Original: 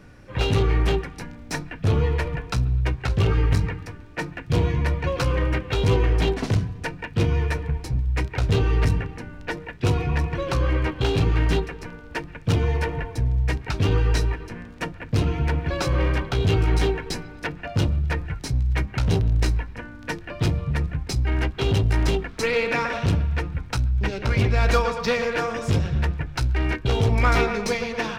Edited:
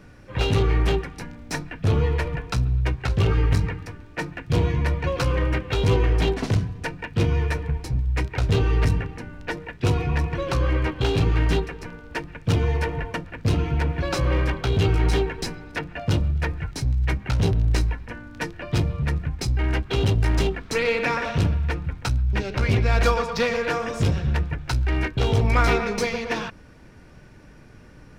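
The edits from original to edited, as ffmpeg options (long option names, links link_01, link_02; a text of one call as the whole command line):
ffmpeg -i in.wav -filter_complex "[0:a]asplit=2[link_01][link_02];[link_01]atrim=end=13.142[link_03];[link_02]atrim=start=14.818[link_04];[link_03][link_04]acrossfade=duration=0.004:curve1=hsin:curve2=hsin" out.wav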